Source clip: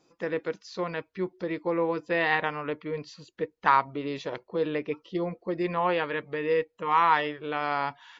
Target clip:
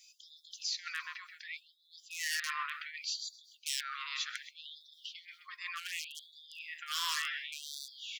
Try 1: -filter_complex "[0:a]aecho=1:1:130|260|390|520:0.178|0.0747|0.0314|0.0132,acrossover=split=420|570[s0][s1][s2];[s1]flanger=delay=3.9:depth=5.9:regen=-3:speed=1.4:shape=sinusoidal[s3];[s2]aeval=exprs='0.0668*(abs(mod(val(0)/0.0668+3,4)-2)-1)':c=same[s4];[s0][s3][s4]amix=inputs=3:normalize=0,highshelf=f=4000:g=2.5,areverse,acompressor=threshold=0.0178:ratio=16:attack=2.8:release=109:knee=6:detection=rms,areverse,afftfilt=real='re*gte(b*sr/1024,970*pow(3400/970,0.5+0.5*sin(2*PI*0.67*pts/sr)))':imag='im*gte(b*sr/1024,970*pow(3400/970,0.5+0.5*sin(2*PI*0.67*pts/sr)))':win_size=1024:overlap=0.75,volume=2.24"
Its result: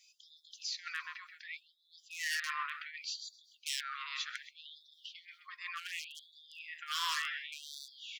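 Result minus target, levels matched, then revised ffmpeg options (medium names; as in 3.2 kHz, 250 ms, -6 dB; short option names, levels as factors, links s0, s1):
8 kHz band -2.5 dB
-filter_complex "[0:a]aecho=1:1:130|260|390|520:0.178|0.0747|0.0314|0.0132,acrossover=split=420|570[s0][s1][s2];[s1]flanger=delay=3.9:depth=5.9:regen=-3:speed=1.4:shape=sinusoidal[s3];[s2]aeval=exprs='0.0668*(abs(mod(val(0)/0.0668+3,4)-2)-1)':c=same[s4];[s0][s3][s4]amix=inputs=3:normalize=0,highshelf=f=4000:g=10.5,areverse,acompressor=threshold=0.0178:ratio=16:attack=2.8:release=109:knee=6:detection=rms,areverse,afftfilt=real='re*gte(b*sr/1024,970*pow(3400/970,0.5+0.5*sin(2*PI*0.67*pts/sr)))':imag='im*gte(b*sr/1024,970*pow(3400/970,0.5+0.5*sin(2*PI*0.67*pts/sr)))':win_size=1024:overlap=0.75,volume=2.24"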